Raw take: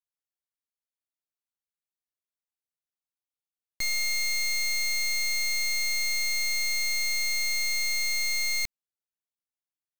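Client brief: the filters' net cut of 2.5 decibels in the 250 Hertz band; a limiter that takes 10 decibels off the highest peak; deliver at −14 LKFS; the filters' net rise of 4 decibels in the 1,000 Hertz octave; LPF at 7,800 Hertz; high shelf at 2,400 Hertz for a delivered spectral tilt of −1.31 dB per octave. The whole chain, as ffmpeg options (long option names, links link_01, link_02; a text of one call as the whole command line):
ffmpeg -i in.wav -af "lowpass=7800,equalizer=frequency=250:width_type=o:gain=-3,equalizer=frequency=1000:width_type=o:gain=7,highshelf=frequency=2400:gain=-8,volume=25.5dB,alimiter=limit=-8.5dB:level=0:latency=1" out.wav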